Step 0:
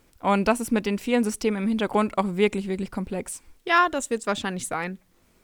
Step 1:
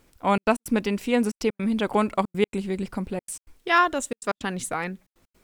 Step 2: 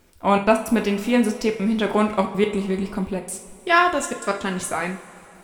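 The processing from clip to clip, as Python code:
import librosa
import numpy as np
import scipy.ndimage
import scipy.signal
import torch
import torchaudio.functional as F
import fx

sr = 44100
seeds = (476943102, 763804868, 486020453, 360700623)

y1 = fx.step_gate(x, sr, bpm=160, pattern='xxxx.x.xxx', floor_db=-60.0, edge_ms=4.5)
y2 = fx.rev_double_slope(y1, sr, seeds[0], early_s=0.42, late_s=3.4, knee_db=-18, drr_db=3.0)
y2 = y2 * 10.0 ** (2.0 / 20.0)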